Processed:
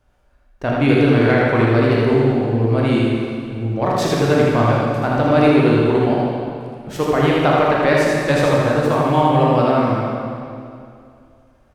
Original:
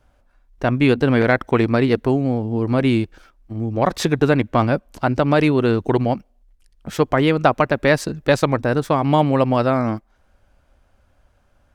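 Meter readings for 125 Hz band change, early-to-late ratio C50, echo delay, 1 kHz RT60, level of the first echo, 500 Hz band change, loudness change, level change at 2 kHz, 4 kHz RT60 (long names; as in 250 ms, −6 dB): +3.0 dB, −3.0 dB, 80 ms, 2.4 s, −3.0 dB, +3.0 dB, +2.5 dB, +2.0 dB, 2.1 s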